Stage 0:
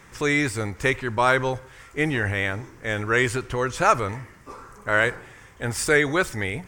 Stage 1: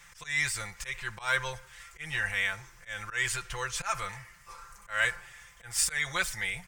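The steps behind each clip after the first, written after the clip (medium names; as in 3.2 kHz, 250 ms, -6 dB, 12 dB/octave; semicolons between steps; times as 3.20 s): slow attack 180 ms; amplifier tone stack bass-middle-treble 10-0-10; comb 5.8 ms, depth 73%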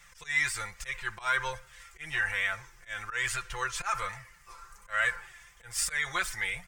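dynamic bell 1.3 kHz, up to +6 dB, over -42 dBFS, Q 0.85; in parallel at +2.5 dB: peak limiter -17.5 dBFS, peak gain reduction 8 dB; on the sum: flange 1.2 Hz, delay 1.4 ms, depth 1.7 ms, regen +48%; trim -5.5 dB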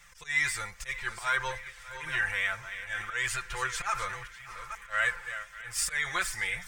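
chunks repeated in reverse 432 ms, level -10.5 dB; band-passed feedback delay 595 ms, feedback 76%, band-pass 2.4 kHz, level -16 dB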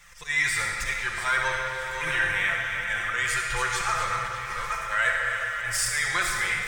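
recorder AGC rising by 12 dB/s; reverberation RT60 2.6 s, pre-delay 15 ms, DRR 0 dB; trim +2.5 dB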